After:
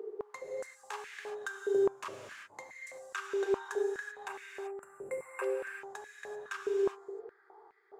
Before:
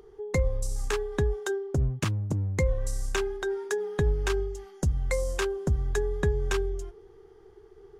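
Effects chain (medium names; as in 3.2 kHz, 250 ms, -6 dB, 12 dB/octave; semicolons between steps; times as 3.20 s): local Wiener filter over 15 samples; time-frequency box 4.28–5.44 s, 2.8–7.2 kHz -20 dB; reverse; compression 8:1, threshold -37 dBFS, peak gain reduction 16.5 dB; reverse; gated-style reverb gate 410 ms flat, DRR 0 dB; step-sequenced high-pass 4.8 Hz 430–2000 Hz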